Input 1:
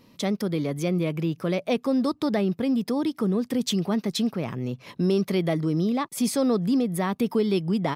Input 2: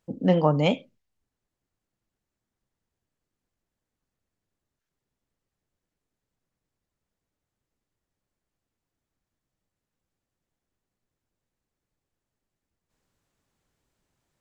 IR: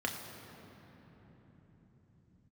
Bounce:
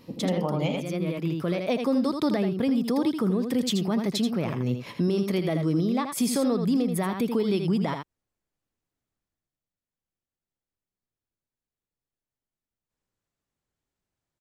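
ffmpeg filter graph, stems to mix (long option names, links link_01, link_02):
-filter_complex "[0:a]bandreject=frequency=5900:width=28,volume=2dB,asplit=2[link_01][link_02];[link_02]volume=-7.5dB[link_03];[1:a]volume=-3dB,afade=type=out:start_time=9.01:duration=0.56:silence=0.398107,asplit=3[link_04][link_05][link_06];[link_05]volume=-4.5dB[link_07];[link_06]apad=whole_len=350632[link_08];[link_01][link_08]sidechaincompress=threshold=-33dB:ratio=8:attack=16:release=902[link_09];[link_03][link_07]amix=inputs=2:normalize=0,aecho=0:1:81:1[link_10];[link_09][link_04][link_10]amix=inputs=3:normalize=0,alimiter=limit=-16.5dB:level=0:latency=1:release=180"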